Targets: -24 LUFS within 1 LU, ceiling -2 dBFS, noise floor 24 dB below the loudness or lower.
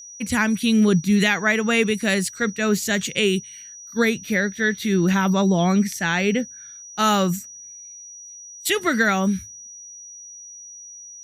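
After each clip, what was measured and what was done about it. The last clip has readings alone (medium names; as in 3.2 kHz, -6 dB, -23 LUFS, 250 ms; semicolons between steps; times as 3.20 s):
steady tone 5.8 kHz; tone level -38 dBFS; loudness -20.5 LUFS; peak level -6.0 dBFS; loudness target -24.0 LUFS
-> band-stop 5.8 kHz, Q 30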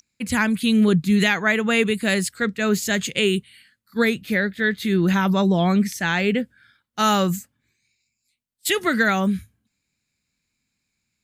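steady tone not found; loudness -20.5 LUFS; peak level -6.0 dBFS; loudness target -24.0 LUFS
-> trim -3.5 dB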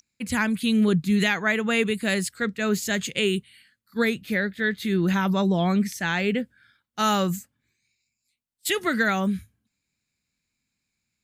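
loudness -24.0 LUFS; peak level -9.5 dBFS; noise floor -81 dBFS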